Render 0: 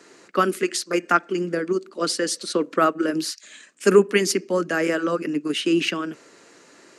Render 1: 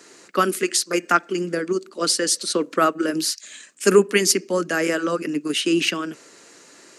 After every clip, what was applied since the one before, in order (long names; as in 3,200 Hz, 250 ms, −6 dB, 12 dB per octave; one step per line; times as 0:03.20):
high-shelf EQ 4,200 Hz +9 dB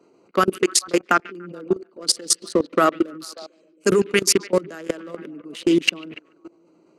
adaptive Wiener filter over 25 samples
echo through a band-pass that steps 144 ms, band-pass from 2,800 Hz, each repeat −0.7 octaves, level −11.5 dB
output level in coarse steps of 21 dB
level +6 dB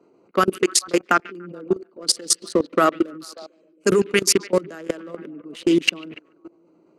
one half of a high-frequency compander decoder only